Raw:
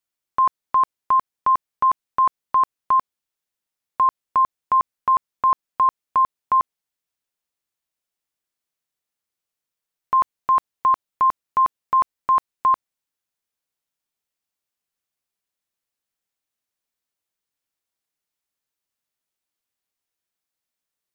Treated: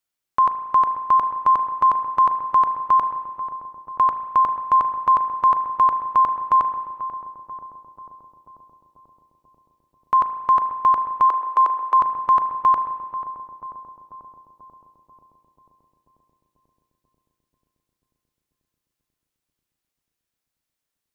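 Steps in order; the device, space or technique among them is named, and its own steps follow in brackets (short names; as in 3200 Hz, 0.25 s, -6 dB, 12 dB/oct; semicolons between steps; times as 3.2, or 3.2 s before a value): dub delay into a spring reverb (darkening echo 0.489 s, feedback 77%, low-pass 920 Hz, level -10.5 dB; spring tank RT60 1.4 s, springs 36 ms, chirp 45 ms, DRR 10 dB); 11.29–12 steep high-pass 320 Hz 36 dB/oct; gain +1.5 dB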